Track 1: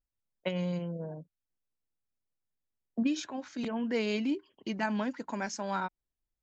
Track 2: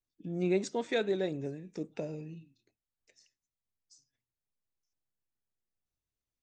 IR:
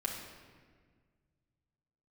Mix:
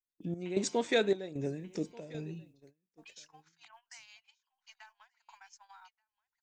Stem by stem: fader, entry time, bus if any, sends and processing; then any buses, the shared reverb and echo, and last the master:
-8.5 dB, 0.00 s, no send, echo send -10.5 dB, steep high-pass 730 Hz 96 dB/oct; compressor 10:1, threshold -45 dBFS, peak gain reduction 16.5 dB
+2.5 dB, 0.00 s, no send, echo send -23 dB, step gate "xxx..xxxxx..xx" 133 bpm -12 dB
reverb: off
echo: echo 1.184 s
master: gate -57 dBFS, range -18 dB; high shelf 4400 Hz +6 dB

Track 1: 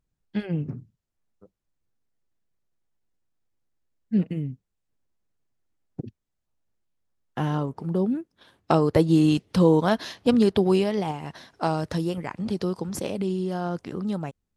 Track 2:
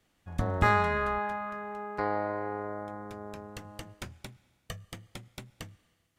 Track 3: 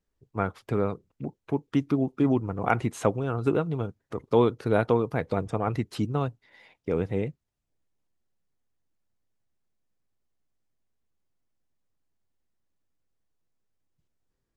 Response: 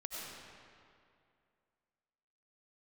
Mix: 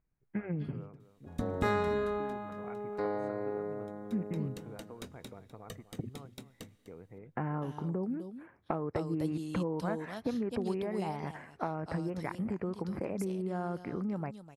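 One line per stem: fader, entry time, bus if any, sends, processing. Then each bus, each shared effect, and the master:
-1.5 dB, 0.00 s, bus A, no send, echo send -20 dB, high shelf 5200 Hz +11.5 dB
-10.5 dB, 1.00 s, no bus, no send, echo send -15 dB, high shelf 4800 Hz +8.5 dB; small resonant body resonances 250/430/3800 Hz, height 13 dB, ringing for 30 ms
-17.5 dB, 0.00 s, bus A, no send, echo send -14.5 dB, compressor 5:1, threshold -27 dBFS, peak gain reduction 11 dB
bus A: 0.0 dB, elliptic low-pass 2300 Hz, stop band 40 dB; compressor 6:1, threshold -32 dBFS, peak gain reduction 15.5 dB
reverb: off
echo: echo 0.251 s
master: dry

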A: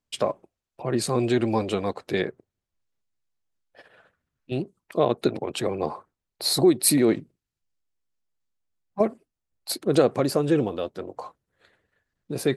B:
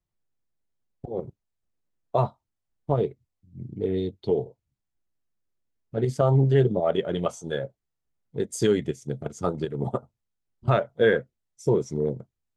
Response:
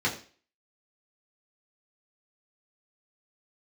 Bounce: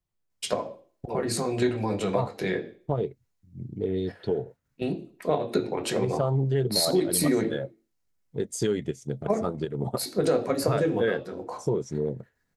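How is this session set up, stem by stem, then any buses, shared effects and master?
+2.0 dB, 0.30 s, send -11 dB, high shelf 4100 Hz +7.5 dB; level quantiser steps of 10 dB
0.0 dB, 0.00 s, no send, dry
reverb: on, RT60 0.40 s, pre-delay 3 ms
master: compressor 2:1, threshold -25 dBFS, peak gain reduction 8 dB

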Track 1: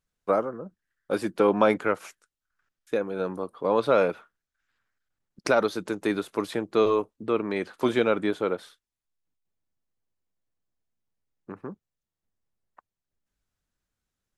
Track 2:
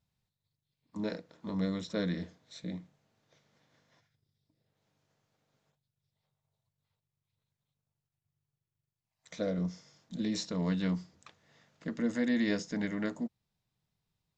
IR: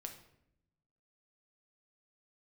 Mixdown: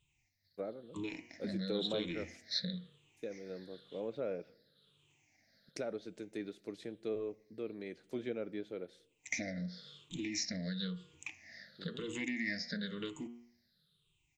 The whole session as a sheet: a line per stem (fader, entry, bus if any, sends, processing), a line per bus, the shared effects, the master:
-16.5 dB, 0.30 s, send -9.5 dB, treble ducked by the level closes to 1900 Hz, closed at -17.5 dBFS; band shelf 2100 Hz -11 dB 2.6 oct
-2.5 dB, 0.00 s, no send, moving spectral ripple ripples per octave 0.67, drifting -0.99 Hz, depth 24 dB; de-hum 119 Hz, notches 27; compressor 8:1, threshold -35 dBFS, peak gain reduction 15.5 dB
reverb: on, RT60 0.75 s, pre-delay 6 ms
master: graphic EQ 1000/2000/4000 Hz -10/+9/+10 dB

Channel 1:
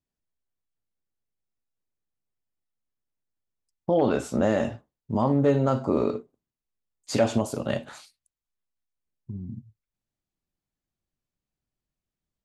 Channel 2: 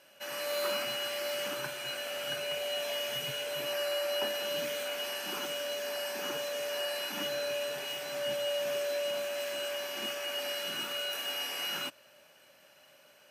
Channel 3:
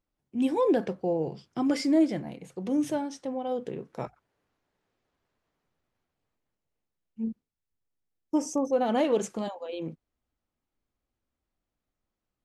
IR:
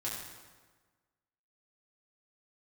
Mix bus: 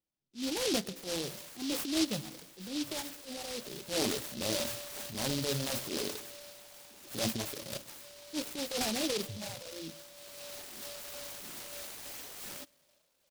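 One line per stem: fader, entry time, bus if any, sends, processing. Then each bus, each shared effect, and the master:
-6.5 dB, 0.00 s, send -14 dB, low shelf 420 Hz -6.5 dB
-5.0 dB, 0.75 s, send -21.5 dB, auto duck -10 dB, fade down 1.30 s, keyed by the third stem
-7.0 dB, 0.00 s, send -13 dB, median filter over 5 samples; HPF 120 Hz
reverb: on, RT60 1.4 s, pre-delay 4 ms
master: reverb removal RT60 1.5 s; transient shaper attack -11 dB, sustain +6 dB; noise-modulated delay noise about 4000 Hz, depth 0.24 ms

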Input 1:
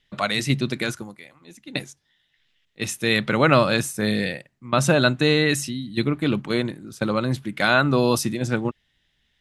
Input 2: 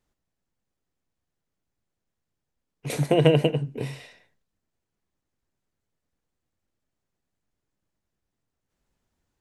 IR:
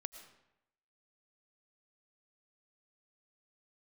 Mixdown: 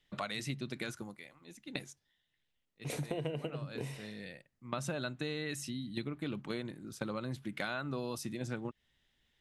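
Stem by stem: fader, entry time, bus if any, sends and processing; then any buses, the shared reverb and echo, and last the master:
-7.5 dB, 0.00 s, no send, auto duck -17 dB, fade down 0.95 s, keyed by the second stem
-6.0 dB, 0.00 s, no send, dry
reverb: off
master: compressor 6:1, threshold -35 dBFS, peak gain reduction 15.5 dB

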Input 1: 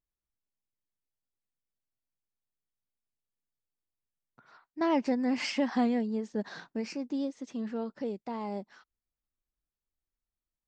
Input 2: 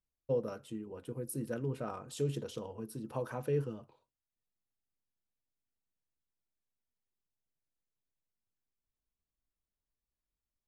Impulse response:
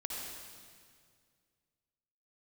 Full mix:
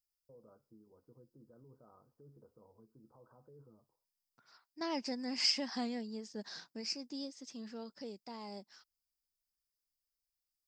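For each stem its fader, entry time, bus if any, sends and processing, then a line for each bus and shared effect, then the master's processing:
+2.5 dB, 0.00 s, no send, bell 5000 Hz +13 dB 0.29 oct
-5.5 dB, 0.00 s, no send, limiter -32.5 dBFS, peak gain reduction 11 dB; steep low-pass 1300 Hz 48 dB/oct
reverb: off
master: pre-emphasis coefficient 0.8

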